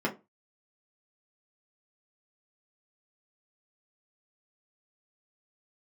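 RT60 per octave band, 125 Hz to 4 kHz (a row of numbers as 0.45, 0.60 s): 0.30, 0.25, 0.25, 0.25, 0.20, 0.15 s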